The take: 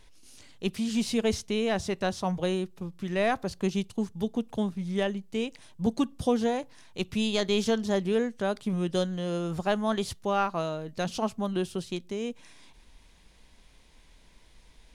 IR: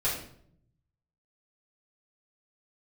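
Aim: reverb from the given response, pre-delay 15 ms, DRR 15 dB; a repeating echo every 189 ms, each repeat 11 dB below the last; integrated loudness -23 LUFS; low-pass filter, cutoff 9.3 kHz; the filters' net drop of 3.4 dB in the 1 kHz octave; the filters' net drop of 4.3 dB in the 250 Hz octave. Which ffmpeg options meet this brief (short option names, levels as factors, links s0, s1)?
-filter_complex "[0:a]lowpass=9300,equalizer=f=250:t=o:g=-5.5,equalizer=f=1000:t=o:g=-4.5,aecho=1:1:189|378|567:0.282|0.0789|0.0221,asplit=2[s0][s1];[1:a]atrim=start_sample=2205,adelay=15[s2];[s1][s2]afir=irnorm=-1:irlink=0,volume=0.0668[s3];[s0][s3]amix=inputs=2:normalize=0,volume=2.82"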